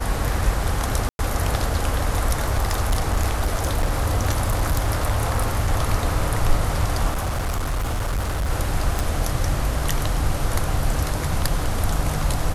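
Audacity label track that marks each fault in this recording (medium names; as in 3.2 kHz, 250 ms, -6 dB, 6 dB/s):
1.090000	1.190000	dropout 101 ms
2.330000	5.720000	clipped -15 dBFS
7.100000	8.500000	clipped -20 dBFS
8.990000	8.990000	pop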